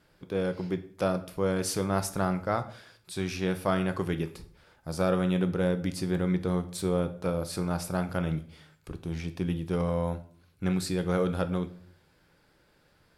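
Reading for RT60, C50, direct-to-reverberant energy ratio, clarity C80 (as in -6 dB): 0.55 s, 14.5 dB, 9.5 dB, 18.5 dB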